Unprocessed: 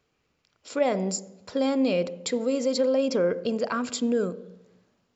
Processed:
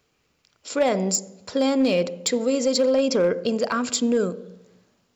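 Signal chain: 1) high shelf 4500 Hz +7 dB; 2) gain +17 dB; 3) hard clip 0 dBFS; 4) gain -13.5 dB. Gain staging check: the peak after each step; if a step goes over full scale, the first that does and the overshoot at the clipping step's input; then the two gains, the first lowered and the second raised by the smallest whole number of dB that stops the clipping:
-11.0, +6.0, 0.0, -13.5 dBFS; step 2, 6.0 dB; step 2 +11 dB, step 4 -7.5 dB

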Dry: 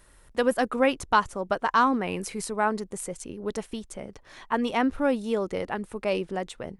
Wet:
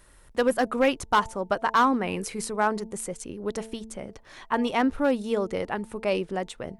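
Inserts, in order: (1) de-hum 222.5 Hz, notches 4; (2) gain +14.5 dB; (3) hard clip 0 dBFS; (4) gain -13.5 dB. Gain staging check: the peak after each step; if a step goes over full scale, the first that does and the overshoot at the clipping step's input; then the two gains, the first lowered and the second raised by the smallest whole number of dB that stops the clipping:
-8.0, +6.5, 0.0, -13.5 dBFS; step 2, 6.5 dB; step 2 +7.5 dB, step 4 -6.5 dB

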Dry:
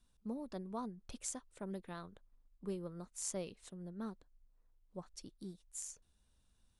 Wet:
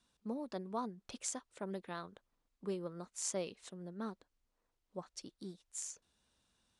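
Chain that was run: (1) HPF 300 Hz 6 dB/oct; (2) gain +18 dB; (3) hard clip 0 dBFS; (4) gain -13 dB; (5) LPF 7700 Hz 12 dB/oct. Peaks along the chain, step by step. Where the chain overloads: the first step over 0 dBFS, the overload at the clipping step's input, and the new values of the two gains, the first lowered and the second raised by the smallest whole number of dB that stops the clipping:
-22.0, -4.0, -4.0, -17.0, -21.0 dBFS; no overload

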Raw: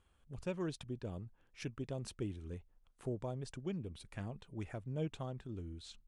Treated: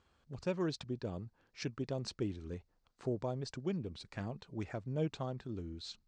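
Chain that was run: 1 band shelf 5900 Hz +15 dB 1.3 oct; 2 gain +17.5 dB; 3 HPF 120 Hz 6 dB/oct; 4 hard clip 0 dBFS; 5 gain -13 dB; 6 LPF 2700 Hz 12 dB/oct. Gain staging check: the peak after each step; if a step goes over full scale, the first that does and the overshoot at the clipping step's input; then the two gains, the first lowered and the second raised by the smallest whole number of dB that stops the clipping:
-22.0, -4.5, -4.5, -4.5, -17.5, -24.0 dBFS; no overload

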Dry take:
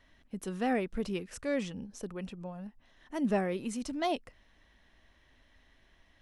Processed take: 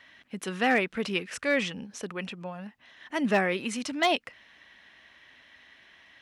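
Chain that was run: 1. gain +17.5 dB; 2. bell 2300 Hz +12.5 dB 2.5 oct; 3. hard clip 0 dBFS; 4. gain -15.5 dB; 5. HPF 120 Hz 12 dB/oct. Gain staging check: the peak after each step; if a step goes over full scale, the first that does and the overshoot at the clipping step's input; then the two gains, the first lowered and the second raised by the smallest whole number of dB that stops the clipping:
-0.5, +5.5, 0.0, -15.5, -12.5 dBFS; step 2, 5.5 dB; step 1 +11.5 dB, step 4 -9.5 dB

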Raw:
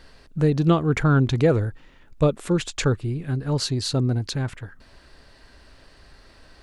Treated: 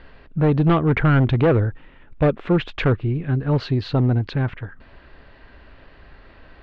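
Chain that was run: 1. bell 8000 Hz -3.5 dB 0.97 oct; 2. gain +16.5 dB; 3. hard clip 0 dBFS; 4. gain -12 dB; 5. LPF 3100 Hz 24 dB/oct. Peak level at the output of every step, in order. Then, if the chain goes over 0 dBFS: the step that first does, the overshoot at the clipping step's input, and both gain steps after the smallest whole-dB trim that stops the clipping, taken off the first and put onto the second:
-7.0, +9.5, 0.0, -12.0, -10.5 dBFS; step 2, 9.5 dB; step 2 +6.5 dB, step 4 -2 dB

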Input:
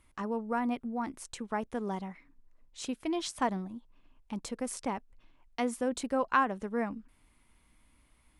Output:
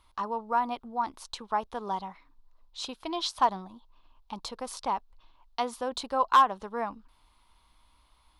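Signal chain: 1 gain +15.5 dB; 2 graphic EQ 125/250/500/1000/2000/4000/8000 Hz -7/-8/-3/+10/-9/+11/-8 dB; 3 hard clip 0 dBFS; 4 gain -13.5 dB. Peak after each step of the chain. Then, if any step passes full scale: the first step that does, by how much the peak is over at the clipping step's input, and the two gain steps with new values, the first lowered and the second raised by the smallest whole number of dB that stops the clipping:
+2.5, +6.0, 0.0, -13.5 dBFS; step 1, 6.0 dB; step 1 +9.5 dB, step 4 -7.5 dB

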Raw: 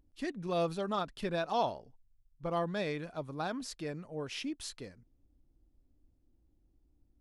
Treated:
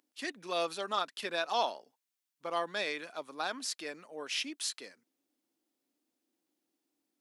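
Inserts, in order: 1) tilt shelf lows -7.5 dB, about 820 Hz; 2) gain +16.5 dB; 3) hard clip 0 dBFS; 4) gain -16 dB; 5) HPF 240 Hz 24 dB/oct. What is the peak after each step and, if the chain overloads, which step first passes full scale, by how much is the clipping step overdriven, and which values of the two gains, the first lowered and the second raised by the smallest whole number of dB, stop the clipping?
-18.5, -2.0, -2.0, -18.0, -18.5 dBFS; no overload

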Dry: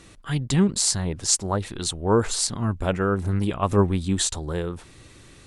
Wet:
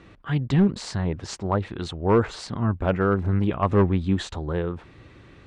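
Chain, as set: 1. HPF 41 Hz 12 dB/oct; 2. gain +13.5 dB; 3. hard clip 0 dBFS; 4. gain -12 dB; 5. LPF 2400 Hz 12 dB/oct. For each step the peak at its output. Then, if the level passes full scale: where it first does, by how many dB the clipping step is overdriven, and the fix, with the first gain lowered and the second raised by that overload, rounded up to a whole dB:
-4.0, +9.5, 0.0, -12.0, -11.5 dBFS; step 2, 9.5 dB; step 2 +3.5 dB, step 4 -2 dB

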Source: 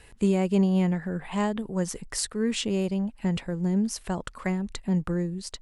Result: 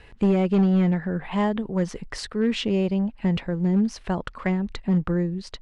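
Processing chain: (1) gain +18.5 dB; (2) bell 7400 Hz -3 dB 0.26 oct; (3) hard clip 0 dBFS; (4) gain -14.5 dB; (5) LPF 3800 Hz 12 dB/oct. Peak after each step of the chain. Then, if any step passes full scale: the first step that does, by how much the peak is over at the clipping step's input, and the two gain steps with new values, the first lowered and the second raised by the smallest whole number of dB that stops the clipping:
+6.5, +6.0, 0.0, -14.5, -14.5 dBFS; step 1, 6.0 dB; step 1 +12.5 dB, step 4 -8.5 dB

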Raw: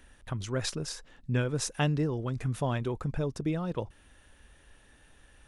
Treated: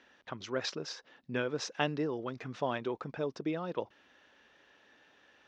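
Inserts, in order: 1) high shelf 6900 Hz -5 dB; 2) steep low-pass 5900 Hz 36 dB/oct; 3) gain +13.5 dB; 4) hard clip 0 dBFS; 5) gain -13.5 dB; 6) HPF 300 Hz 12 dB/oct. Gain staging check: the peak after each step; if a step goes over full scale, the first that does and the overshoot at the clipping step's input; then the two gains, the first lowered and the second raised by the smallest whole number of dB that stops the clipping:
-15.5, -15.5, -2.0, -2.0, -15.5, -13.0 dBFS; no overload

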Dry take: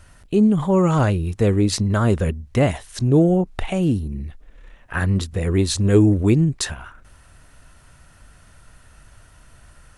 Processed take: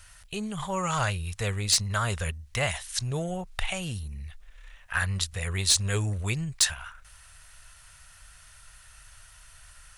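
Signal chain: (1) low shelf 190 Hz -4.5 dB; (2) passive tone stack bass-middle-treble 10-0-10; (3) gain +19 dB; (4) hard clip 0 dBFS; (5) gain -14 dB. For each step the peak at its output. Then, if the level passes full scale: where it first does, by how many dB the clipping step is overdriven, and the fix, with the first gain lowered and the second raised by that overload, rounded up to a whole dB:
-6.0, -12.0, +7.0, 0.0, -14.0 dBFS; step 3, 7.0 dB; step 3 +12 dB, step 5 -7 dB

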